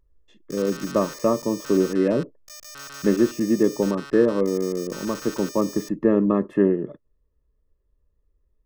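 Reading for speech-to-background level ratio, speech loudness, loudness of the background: 15.5 dB, −23.0 LKFS, −38.5 LKFS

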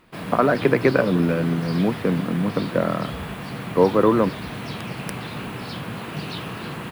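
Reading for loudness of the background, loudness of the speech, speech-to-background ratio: −32.0 LKFS, −21.0 LKFS, 11.0 dB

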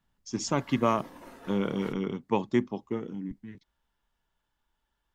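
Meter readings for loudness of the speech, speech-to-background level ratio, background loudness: −30.5 LKFS, 19.0 dB, −49.5 LKFS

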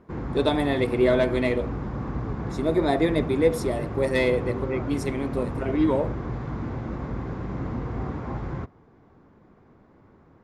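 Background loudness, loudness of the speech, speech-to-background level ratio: −32.0 LKFS, −25.0 LKFS, 7.0 dB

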